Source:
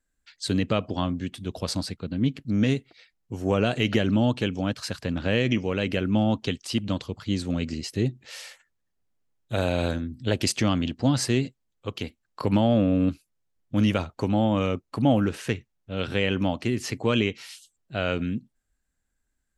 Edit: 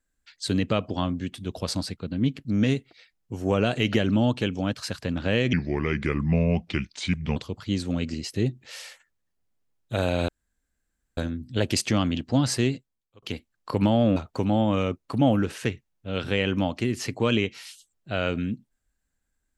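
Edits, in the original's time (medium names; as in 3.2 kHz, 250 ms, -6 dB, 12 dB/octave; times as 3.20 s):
5.53–6.96 s: speed 78%
9.88 s: insert room tone 0.89 s
11.35–11.93 s: fade out
12.87–14.00 s: delete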